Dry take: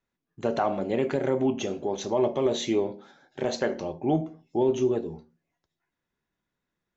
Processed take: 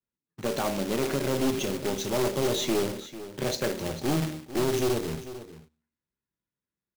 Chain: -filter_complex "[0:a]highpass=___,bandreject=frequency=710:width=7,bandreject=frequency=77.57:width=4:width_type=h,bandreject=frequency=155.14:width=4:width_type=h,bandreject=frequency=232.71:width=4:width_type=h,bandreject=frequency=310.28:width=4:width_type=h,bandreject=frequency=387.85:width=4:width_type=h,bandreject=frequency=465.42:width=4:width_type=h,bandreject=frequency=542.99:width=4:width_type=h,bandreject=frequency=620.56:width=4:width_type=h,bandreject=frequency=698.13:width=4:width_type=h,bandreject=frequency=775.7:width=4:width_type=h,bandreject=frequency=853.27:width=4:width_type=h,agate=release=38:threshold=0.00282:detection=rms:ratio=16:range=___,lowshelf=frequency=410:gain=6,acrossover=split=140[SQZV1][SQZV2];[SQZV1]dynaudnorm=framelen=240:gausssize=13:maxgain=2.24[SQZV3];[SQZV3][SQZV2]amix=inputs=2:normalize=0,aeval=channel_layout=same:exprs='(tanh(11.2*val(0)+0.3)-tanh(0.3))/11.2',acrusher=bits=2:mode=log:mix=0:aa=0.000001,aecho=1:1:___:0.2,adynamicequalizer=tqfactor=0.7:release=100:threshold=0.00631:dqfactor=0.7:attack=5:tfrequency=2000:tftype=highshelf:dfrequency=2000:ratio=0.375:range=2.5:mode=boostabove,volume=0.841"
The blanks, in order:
47, 0.282, 447